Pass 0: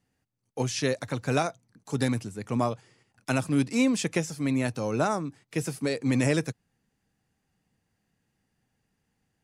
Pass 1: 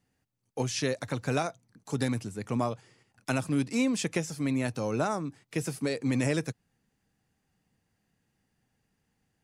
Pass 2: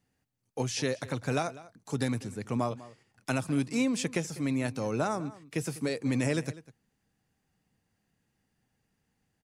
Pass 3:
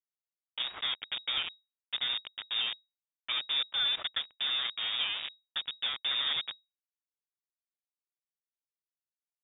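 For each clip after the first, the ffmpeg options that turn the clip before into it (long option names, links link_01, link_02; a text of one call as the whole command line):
ffmpeg -i in.wav -af "acompressor=threshold=-29dB:ratio=1.5" out.wav
ffmpeg -i in.wav -filter_complex "[0:a]asplit=2[link_01][link_02];[link_02]adelay=198.3,volume=-18dB,highshelf=frequency=4000:gain=-4.46[link_03];[link_01][link_03]amix=inputs=2:normalize=0,volume=-1dB" out.wav
ffmpeg -i in.wav -af "acrusher=bits=4:mix=0:aa=0.000001,lowpass=frequency=3200:width_type=q:width=0.5098,lowpass=frequency=3200:width_type=q:width=0.6013,lowpass=frequency=3200:width_type=q:width=0.9,lowpass=frequency=3200:width_type=q:width=2.563,afreqshift=-3800,volume=-3.5dB" out.wav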